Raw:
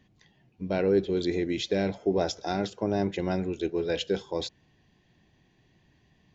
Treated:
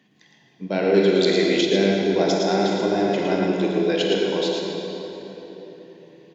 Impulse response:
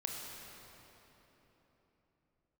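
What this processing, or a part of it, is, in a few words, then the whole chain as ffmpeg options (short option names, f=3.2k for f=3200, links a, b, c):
PA in a hall: -filter_complex "[0:a]highpass=f=160:w=0.5412,highpass=f=160:w=1.3066,equalizer=f=2.7k:t=o:w=2.1:g=3,aecho=1:1:112:0.562[a];[1:a]atrim=start_sample=2205[b];[a][b]afir=irnorm=-1:irlink=0,asettb=1/sr,asplit=3[c][d][e];[c]atrim=end=0.944[f];[d]atrim=start=0.94:end=1.61,asetpts=PTS-STARTPTS,afade=t=in:d=0.004:c=qsin,afade=t=out:st=0.666:d=0.004:c=qsin,highshelf=f=2.2k:g=9.5[g];[e]atrim=start=1.606[h];[f][g]acrossfade=d=0.004:c1=hsin:c2=qsin[i];[i][h]acrossfade=d=0.004:c1=qsin:c2=hsin,volume=5dB"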